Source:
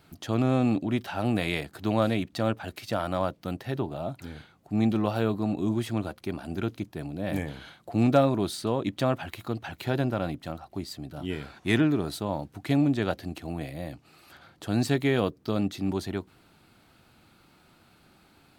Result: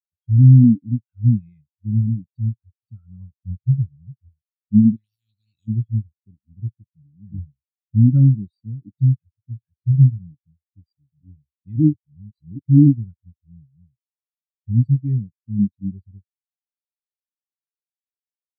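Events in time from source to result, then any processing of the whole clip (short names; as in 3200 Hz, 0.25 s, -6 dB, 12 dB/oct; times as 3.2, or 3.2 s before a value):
3.31–4.29 low shelf 70 Hz +11.5 dB
4.96–5.68 spectral compressor 10:1
11.93–12.59 reverse
whole clip: passive tone stack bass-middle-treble 6-0-2; maximiser +34 dB; spectral expander 4:1; gain -1 dB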